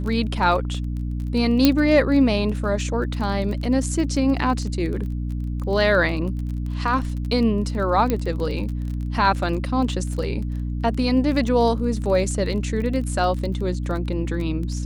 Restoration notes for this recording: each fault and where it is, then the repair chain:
crackle 24 per s -29 dBFS
hum 60 Hz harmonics 5 -26 dBFS
1.65 s: pop -1 dBFS
8.10 s: pop -9 dBFS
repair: de-click; de-hum 60 Hz, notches 5

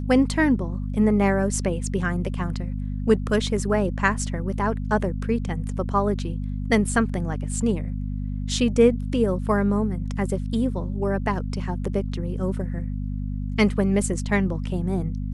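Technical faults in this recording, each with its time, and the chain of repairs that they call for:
hum 50 Hz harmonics 5 -28 dBFS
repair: de-hum 50 Hz, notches 5

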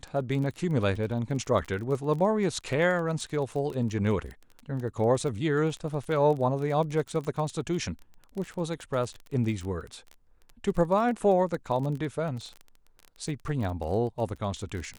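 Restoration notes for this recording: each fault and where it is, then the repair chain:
crackle 22 per s -33 dBFS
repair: de-click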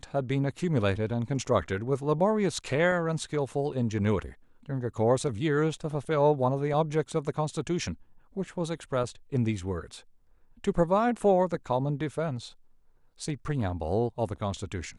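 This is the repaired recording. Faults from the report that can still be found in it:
nothing left

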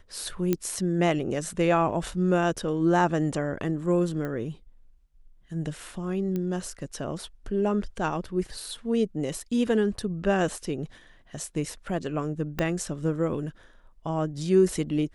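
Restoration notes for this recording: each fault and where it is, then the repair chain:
0.53 s: pop -11 dBFS
4.25 s: pop -22 dBFS
6.36 s: pop -19 dBFS
12.59 s: pop -13 dBFS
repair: de-click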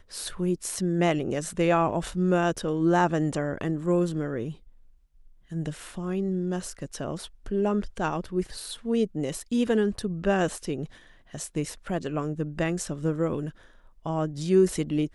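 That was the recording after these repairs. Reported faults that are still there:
12.59 s: pop

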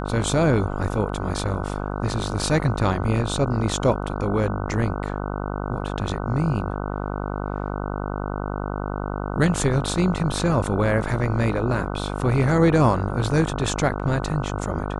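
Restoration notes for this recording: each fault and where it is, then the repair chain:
buzz 50 Hz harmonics 30 -28 dBFS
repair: de-hum 50 Hz, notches 30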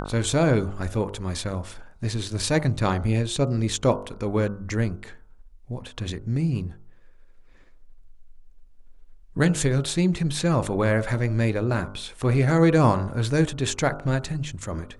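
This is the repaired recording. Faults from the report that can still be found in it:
nothing left

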